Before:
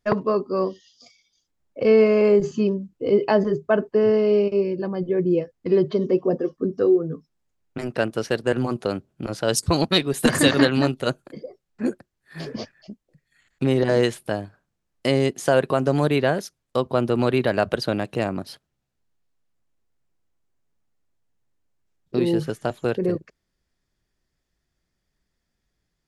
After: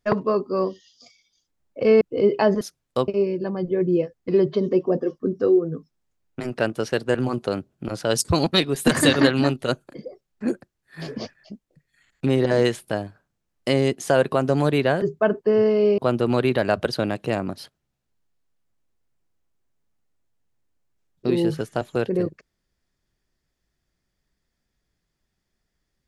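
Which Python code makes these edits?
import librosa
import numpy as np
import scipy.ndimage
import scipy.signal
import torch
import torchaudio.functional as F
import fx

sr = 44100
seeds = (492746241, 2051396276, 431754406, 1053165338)

y = fx.edit(x, sr, fx.cut(start_s=2.01, length_s=0.89),
    fx.swap(start_s=3.5, length_s=0.96, other_s=16.4, other_length_s=0.47), tone=tone)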